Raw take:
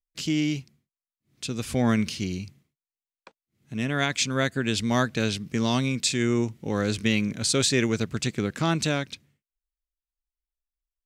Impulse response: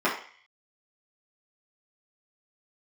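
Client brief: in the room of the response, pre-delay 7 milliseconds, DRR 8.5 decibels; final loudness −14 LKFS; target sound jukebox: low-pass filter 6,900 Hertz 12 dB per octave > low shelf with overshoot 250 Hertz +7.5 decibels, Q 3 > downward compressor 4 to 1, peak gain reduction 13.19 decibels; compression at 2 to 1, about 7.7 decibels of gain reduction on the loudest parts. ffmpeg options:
-filter_complex "[0:a]acompressor=threshold=-33dB:ratio=2,asplit=2[link_01][link_02];[1:a]atrim=start_sample=2205,adelay=7[link_03];[link_02][link_03]afir=irnorm=-1:irlink=0,volume=-23.5dB[link_04];[link_01][link_04]amix=inputs=2:normalize=0,lowpass=6900,lowshelf=frequency=250:width_type=q:width=3:gain=7.5,acompressor=threshold=-33dB:ratio=4,volume=21.5dB"

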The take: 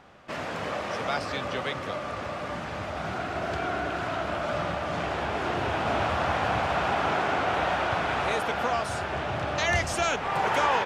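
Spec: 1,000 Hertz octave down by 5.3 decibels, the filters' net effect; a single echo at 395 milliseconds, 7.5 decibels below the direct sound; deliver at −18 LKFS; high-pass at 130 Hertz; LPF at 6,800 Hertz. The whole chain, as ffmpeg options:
ffmpeg -i in.wav -af "highpass=130,lowpass=6800,equalizer=frequency=1000:width_type=o:gain=-7.5,aecho=1:1:395:0.422,volume=12.5dB" out.wav

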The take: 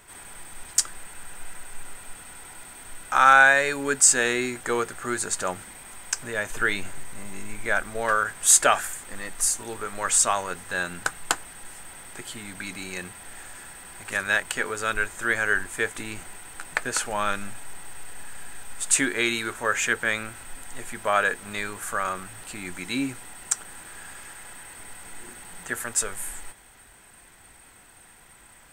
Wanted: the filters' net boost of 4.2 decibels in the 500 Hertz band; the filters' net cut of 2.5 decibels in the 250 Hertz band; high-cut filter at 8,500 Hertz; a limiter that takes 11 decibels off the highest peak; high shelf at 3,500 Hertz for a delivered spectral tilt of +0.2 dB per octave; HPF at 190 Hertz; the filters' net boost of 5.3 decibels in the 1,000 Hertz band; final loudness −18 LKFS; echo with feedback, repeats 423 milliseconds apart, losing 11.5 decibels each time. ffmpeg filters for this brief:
ffmpeg -i in.wav -af "highpass=190,lowpass=8500,equalizer=frequency=250:width_type=o:gain=-4.5,equalizer=frequency=500:width_type=o:gain=4.5,equalizer=frequency=1000:width_type=o:gain=5.5,highshelf=frequency=3500:gain=8.5,alimiter=limit=-9.5dB:level=0:latency=1,aecho=1:1:423|846|1269:0.266|0.0718|0.0194,volume=6dB" out.wav

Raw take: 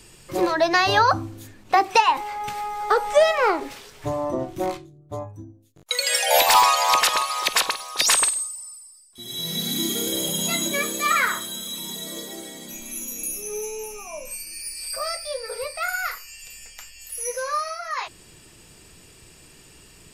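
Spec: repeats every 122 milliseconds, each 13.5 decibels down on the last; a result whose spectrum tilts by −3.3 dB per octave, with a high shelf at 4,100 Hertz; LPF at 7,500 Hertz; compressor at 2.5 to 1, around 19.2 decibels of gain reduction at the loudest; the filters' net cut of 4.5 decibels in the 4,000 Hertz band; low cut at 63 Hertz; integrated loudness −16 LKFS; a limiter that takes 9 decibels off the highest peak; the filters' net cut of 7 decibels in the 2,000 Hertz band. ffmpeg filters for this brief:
ffmpeg -i in.wav -af "highpass=63,lowpass=7500,equalizer=frequency=2000:width_type=o:gain=-9,equalizer=frequency=4000:width_type=o:gain=-6,highshelf=frequency=4100:gain=5.5,acompressor=threshold=-43dB:ratio=2.5,alimiter=level_in=8dB:limit=-24dB:level=0:latency=1,volume=-8dB,aecho=1:1:122|244:0.211|0.0444,volume=25.5dB" out.wav

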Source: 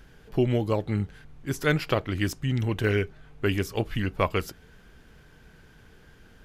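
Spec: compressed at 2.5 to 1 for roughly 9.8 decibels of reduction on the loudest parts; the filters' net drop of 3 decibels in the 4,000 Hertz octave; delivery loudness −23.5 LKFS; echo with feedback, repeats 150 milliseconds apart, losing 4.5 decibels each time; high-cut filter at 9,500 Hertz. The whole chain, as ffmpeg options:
ffmpeg -i in.wav -af "lowpass=9500,equalizer=frequency=4000:width_type=o:gain=-4.5,acompressor=threshold=-34dB:ratio=2.5,aecho=1:1:150|300|450|600|750|900|1050|1200|1350:0.596|0.357|0.214|0.129|0.0772|0.0463|0.0278|0.0167|0.01,volume=11dB" out.wav

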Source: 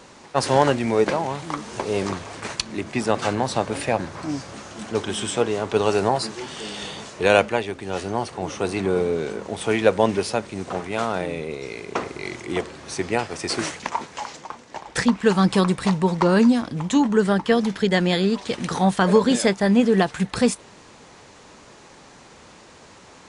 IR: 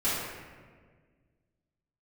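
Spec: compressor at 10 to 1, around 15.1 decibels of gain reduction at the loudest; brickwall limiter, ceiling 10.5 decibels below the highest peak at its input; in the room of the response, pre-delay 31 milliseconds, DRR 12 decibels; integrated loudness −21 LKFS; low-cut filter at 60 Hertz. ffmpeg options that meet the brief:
-filter_complex "[0:a]highpass=60,acompressor=threshold=-27dB:ratio=10,alimiter=limit=-22.5dB:level=0:latency=1,asplit=2[link_01][link_02];[1:a]atrim=start_sample=2205,adelay=31[link_03];[link_02][link_03]afir=irnorm=-1:irlink=0,volume=-23dB[link_04];[link_01][link_04]amix=inputs=2:normalize=0,volume=12.5dB"

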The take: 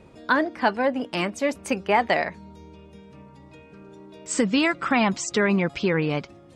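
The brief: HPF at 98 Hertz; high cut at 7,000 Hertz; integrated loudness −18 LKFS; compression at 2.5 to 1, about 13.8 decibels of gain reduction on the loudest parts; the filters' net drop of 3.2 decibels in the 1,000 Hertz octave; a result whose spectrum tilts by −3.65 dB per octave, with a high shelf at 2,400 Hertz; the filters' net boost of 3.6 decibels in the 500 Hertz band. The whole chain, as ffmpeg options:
ffmpeg -i in.wav -af "highpass=98,lowpass=7000,equalizer=frequency=500:width_type=o:gain=6.5,equalizer=frequency=1000:width_type=o:gain=-8.5,highshelf=frequency=2400:gain=6.5,acompressor=threshold=-37dB:ratio=2.5,volume=17.5dB" out.wav

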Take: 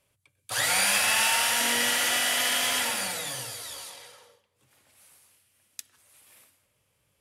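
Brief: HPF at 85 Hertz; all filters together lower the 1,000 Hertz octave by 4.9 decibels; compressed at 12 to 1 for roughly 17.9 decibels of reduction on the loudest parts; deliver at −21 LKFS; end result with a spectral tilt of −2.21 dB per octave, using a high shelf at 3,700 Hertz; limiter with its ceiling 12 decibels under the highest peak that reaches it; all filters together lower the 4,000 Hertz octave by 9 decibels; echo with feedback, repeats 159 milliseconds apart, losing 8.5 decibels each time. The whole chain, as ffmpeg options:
ffmpeg -i in.wav -af "highpass=85,equalizer=frequency=1000:width_type=o:gain=-5.5,highshelf=frequency=3700:gain=-7.5,equalizer=frequency=4000:width_type=o:gain=-7.5,acompressor=threshold=-45dB:ratio=12,alimiter=level_in=17.5dB:limit=-24dB:level=0:latency=1,volume=-17.5dB,aecho=1:1:159|318|477|636:0.376|0.143|0.0543|0.0206,volume=28dB" out.wav

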